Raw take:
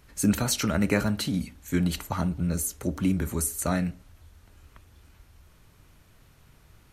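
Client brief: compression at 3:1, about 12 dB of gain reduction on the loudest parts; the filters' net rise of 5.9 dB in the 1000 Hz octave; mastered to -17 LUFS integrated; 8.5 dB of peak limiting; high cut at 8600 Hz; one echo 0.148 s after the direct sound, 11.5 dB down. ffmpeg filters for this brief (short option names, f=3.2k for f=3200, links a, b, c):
-af "lowpass=8.6k,equalizer=f=1k:t=o:g=8,acompressor=threshold=-34dB:ratio=3,alimiter=level_in=3.5dB:limit=-24dB:level=0:latency=1,volume=-3.5dB,aecho=1:1:148:0.266,volume=21dB"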